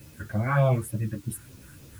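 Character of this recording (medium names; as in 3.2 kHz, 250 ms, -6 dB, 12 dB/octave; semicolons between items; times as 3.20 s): phasing stages 4, 3.4 Hz, lowest notch 690–1700 Hz; a quantiser's noise floor 10-bit, dither triangular; a shimmering, thickened sound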